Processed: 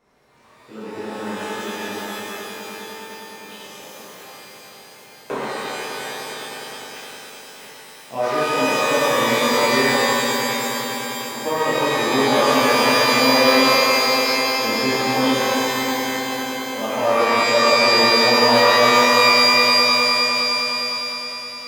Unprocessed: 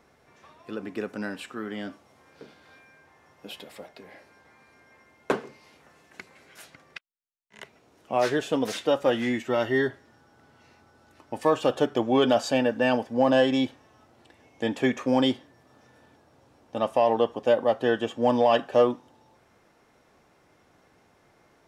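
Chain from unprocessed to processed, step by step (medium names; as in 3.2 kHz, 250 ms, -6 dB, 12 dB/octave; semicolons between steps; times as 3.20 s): echo with a slow build-up 102 ms, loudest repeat 5, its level -13 dB; pitch-shifted reverb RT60 2.5 s, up +12 st, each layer -2 dB, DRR -10 dB; trim -8 dB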